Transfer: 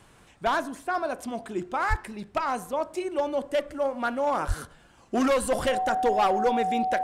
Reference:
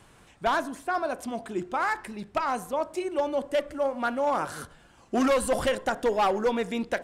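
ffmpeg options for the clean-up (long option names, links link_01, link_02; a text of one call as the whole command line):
ffmpeg -i in.wav -filter_complex "[0:a]bandreject=frequency=750:width=30,asplit=3[link_01][link_02][link_03];[link_01]afade=type=out:start_time=1.89:duration=0.02[link_04];[link_02]highpass=frequency=140:width=0.5412,highpass=frequency=140:width=1.3066,afade=type=in:start_time=1.89:duration=0.02,afade=type=out:start_time=2.01:duration=0.02[link_05];[link_03]afade=type=in:start_time=2.01:duration=0.02[link_06];[link_04][link_05][link_06]amix=inputs=3:normalize=0,asplit=3[link_07][link_08][link_09];[link_07]afade=type=out:start_time=4.47:duration=0.02[link_10];[link_08]highpass=frequency=140:width=0.5412,highpass=frequency=140:width=1.3066,afade=type=in:start_time=4.47:duration=0.02,afade=type=out:start_time=4.59:duration=0.02[link_11];[link_09]afade=type=in:start_time=4.59:duration=0.02[link_12];[link_10][link_11][link_12]amix=inputs=3:normalize=0" out.wav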